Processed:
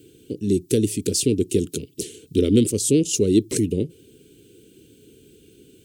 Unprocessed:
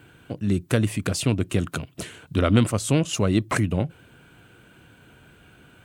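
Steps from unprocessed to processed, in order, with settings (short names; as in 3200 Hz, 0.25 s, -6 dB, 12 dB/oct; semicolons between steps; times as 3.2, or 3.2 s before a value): EQ curve 150 Hz 0 dB, 430 Hz +14 dB, 680 Hz -21 dB, 1200 Hz -25 dB, 3000 Hz +2 dB, 5400 Hz +11 dB; gain -3.5 dB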